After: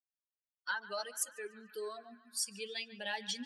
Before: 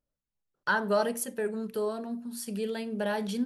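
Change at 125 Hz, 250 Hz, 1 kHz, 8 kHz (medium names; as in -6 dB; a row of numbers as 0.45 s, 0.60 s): no reading, -19.0 dB, -11.0 dB, +1.0 dB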